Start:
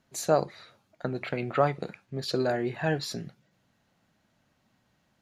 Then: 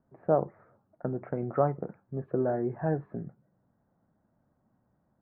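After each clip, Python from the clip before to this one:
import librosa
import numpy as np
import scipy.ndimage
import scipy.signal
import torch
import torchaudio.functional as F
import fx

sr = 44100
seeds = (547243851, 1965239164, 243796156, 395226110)

y = scipy.signal.sosfilt(scipy.signal.bessel(8, 870.0, 'lowpass', norm='mag', fs=sr, output='sos'), x)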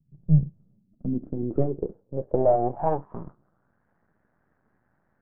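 y = fx.tracing_dist(x, sr, depth_ms=0.23)
y = np.maximum(y, 0.0)
y = fx.filter_sweep_lowpass(y, sr, from_hz=150.0, to_hz=1700.0, start_s=0.41, end_s=3.86, q=4.5)
y = y * librosa.db_to_amplitude(4.5)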